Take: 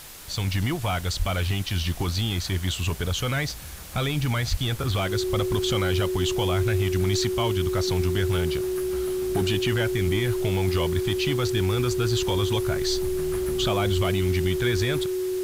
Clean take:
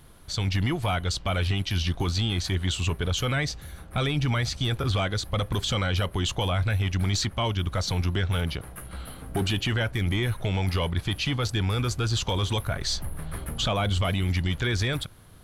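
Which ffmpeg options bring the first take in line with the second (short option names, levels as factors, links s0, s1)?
-filter_complex "[0:a]adeclick=t=4,bandreject=f=370:w=30,asplit=3[s0][s1][s2];[s0]afade=t=out:st=1.18:d=0.02[s3];[s1]highpass=f=140:w=0.5412,highpass=f=140:w=1.3066,afade=t=in:st=1.18:d=0.02,afade=t=out:st=1.3:d=0.02[s4];[s2]afade=t=in:st=1.3:d=0.02[s5];[s3][s4][s5]amix=inputs=3:normalize=0,asplit=3[s6][s7][s8];[s6]afade=t=out:st=4.5:d=0.02[s9];[s7]highpass=f=140:w=0.5412,highpass=f=140:w=1.3066,afade=t=in:st=4.5:d=0.02,afade=t=out:st=4.62:d=0.02[s10];[s8]afade=t=in:st=4.62:d=0.02[s11];[s9][s10][s11]amix=inputs=3:normalize=0,afwtdn=0.0079"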